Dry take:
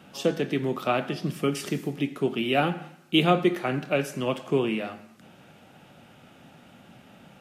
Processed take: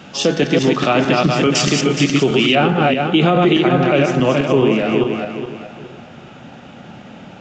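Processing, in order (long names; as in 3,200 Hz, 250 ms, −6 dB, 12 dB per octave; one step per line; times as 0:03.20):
feedback delay that plays each chunk backwards 210 ms, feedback 55%, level −3 dB
high-shelf EQ 2,500 Hz +4 dB, from 0:01.55 +10 dB, from 0:02.55 −4.5 dB
downsampling to 16,000 Hz
boost into a limiter +15.5 dB
every ending faded ahead of time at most 590 dB per second
level −3.5 dB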